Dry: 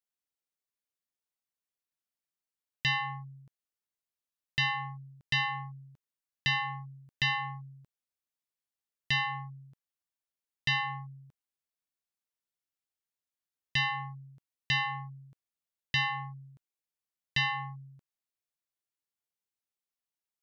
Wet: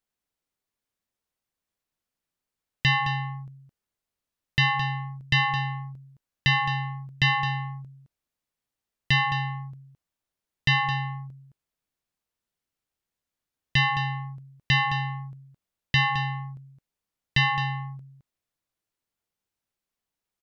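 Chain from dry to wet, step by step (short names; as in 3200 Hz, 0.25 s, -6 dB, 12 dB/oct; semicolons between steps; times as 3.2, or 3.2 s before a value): tilt -1.5 dB/oct; echo 0.215 s -10 dB; gain +7.5 dB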